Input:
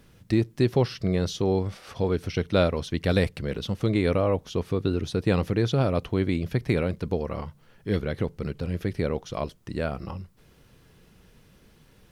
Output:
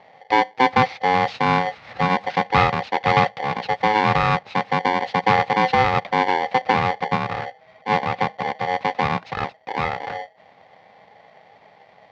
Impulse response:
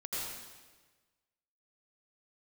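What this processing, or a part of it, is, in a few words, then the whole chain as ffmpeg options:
ring modulator pedal into a guitar cabinet: -af "aeval=exprs='val(0)*sgn(sin(2*PI*640*n/s))':c=same,highpass=81,equalizer=f=110:t=q:w=4:g=6,equalizer=f=170:t=q:w=4:g=4,equalizer=f=330:t=q:w=4:g=-6,equalizer=f=820:t=q:w=4:g=7,equalizer=f=2.1k:t=q:w=4:g=5,equalizer=f=3.1k:t=q:w=4:g=-4,lowpass=f=4k:w=0.5412,lowpass=f=4k:w=1.3066,volume=3dB"

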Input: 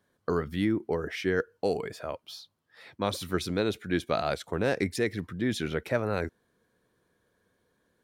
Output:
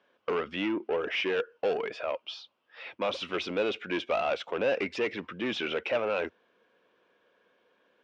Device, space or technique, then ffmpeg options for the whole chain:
overdrive pedal into a guitar cabinet: -filter_complex "[0:a]asplit=2[a][b];[b]highpass=f=720:p=1,volume=22dB,asoftclip=type=tanh:threshold=-12.5dB[c];[a][c]amix=inputs=2:normalize=0,lowpass=f=7.8k:p=1,volume=-6dB,highpass=90,equalizer=f=100:t=q:w=4:g=-9,equalizer=f=150:t=q:w=4:g=-9,equalizer=f=540:t=q:w=4:g=4,equalizer=f=1.8k:t=q:w=4:g=-5,equalizer=f=2.7k:t=q:w=4:g=8,equalizer=f=4.2k:t=q:w=4:g=-9,lowpass=f=4.5k:w=0.5412,lowpass=f=4.5k:w=1.3066,volume=-8dB"

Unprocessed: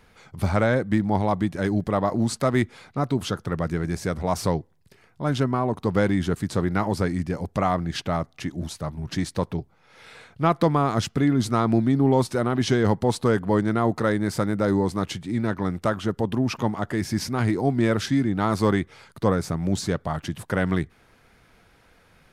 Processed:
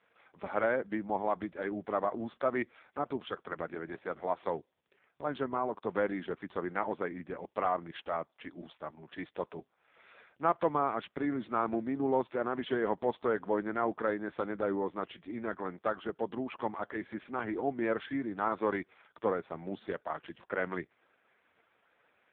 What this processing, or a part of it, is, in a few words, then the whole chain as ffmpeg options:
telephone: -filter_complex "[0:a]asettb=1/sr,asplit=3[a][b][c];[a]atrim=end=3.294[d];[b]atrim=start=3.29:end=4.58,asetpts=PTS-STARTPTS,afade=t=in:d=0.004:c=qsin,afade=t=out:st=1.286:d=0.004:c=qsin,highpass=f=90:p=1[e];[c]atrim=start=4.576[f];[d][e]acrossfade=d=0.004:c1=hsin:c2=qsin[g];[g][f]acrossfade=d=0.004:c1=qsin:c2=hsin,highpass=370,lowpass=3.6k,volume=-5.5dB" -ar 8000 -c:a libopencore_amrnb -b:a 4750

